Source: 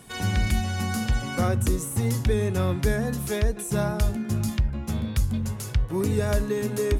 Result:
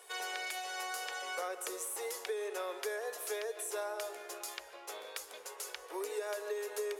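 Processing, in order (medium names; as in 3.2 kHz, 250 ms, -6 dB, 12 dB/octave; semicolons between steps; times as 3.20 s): elliptic high-pass 420 Hz, stop band 50 dB; algorithmic reverb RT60 0.9 s, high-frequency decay 0.9×, pre-delay 100 ms, DRR 15 dB; compression 3:1, threshold -32 dBFS, peak gain reduction 7.5 dB; trim -4 dB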